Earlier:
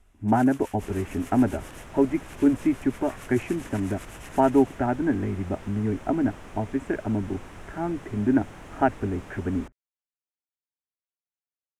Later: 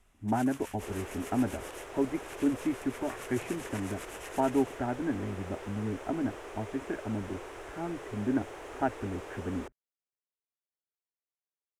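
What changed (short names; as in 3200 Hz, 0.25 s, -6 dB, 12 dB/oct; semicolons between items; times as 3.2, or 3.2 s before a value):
speech -8.0 dB; second sound: add resonant low shelf 290 Hz -10.5 dB, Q 3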